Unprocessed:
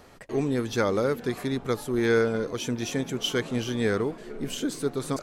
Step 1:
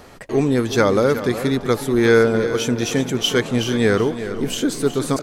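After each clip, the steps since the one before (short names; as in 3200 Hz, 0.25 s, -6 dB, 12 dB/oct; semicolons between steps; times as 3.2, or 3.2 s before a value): feedback echo 0.368 s, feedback 23%, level -12 dB; gain +8.5 dB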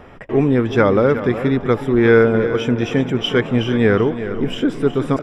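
polynomial smoothing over 25 samples; low shelf 200 Hz +3 dB; gain +1.5 dB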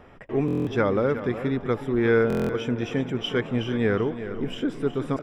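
stuck buffer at 0.46/2.28, samples 1024, times 8; gain -8.5 dB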